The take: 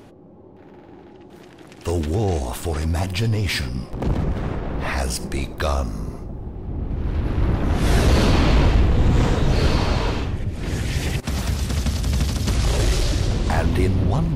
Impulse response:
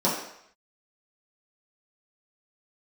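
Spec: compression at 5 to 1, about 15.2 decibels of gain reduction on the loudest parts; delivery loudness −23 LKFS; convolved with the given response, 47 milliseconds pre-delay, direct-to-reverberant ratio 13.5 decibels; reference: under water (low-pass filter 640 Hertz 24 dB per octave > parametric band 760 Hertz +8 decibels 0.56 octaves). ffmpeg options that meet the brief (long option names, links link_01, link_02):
-filter_complex "[0:a]acompressor=threshold=-30dB:ratio=5,asplit=2[link_01][link_02];[1:a]atrim=start_sample=2205,adelay=47[link_03];[link_02][link_03]afir=irnorm=-1:irlink=0,volume=-27.5dB[link_04];[link_01][link_04]amix=inputs=2:normalize=0,lowpass=frequency=640:width=0.5412,lowpass=frequency=640:width=1.3066,equalizer=frequency=760:width_type=o:width=0.56:gain=8,volume=11.5dB"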